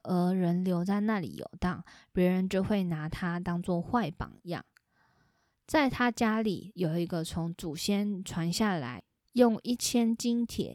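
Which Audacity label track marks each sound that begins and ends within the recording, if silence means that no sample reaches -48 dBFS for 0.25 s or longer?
5.690000	9.000000	sound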